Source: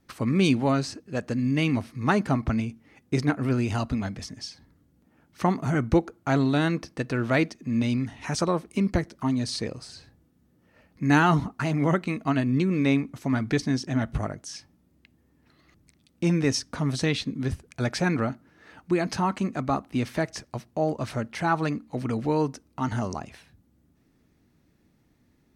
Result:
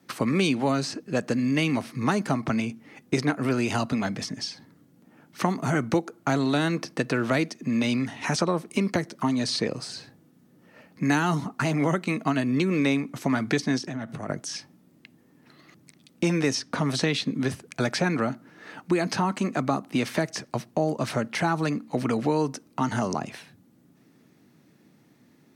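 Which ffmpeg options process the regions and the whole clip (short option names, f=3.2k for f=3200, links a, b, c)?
-filter_complex "[0:a]asettb=1/sr,asplit=3[a][b][c];[a]atrim=end=13.784[d];[b]atrim=start=13.78:end=14.29,asetpts=PTS-STARTPTS,afade=t=in:d=0.004:c=qsin,afade=t=out:st=0.506:d=0.004:c=qsin,acompressor=threshold=-34dB:ratio=12:attack=3.2:release=140:knee=1:detection=peak,bandreject=f=3.1k:w=24[e];[c]atrim=start=14.286[f];[d][e]acrossfade=d=0.004:c1=hsin:c2=qsin[g];[g][f]acrossfade=d=0.004:c1=qsin:c2=hsin,highpass=f=130:w=0.5412,highpass=f=130:w=1.3066,acrossover=split=380|4900[h][i][j];[h]acompressor=threshold=-34dB:ratio=4[k];[i]acompressor=threshold=-33dB:ratio=4[l];[j]acompressor=threshold=-45dB:ratio=4[m];[k][l][m]amix=inputs=3:normalize=0,volume=7.5dB"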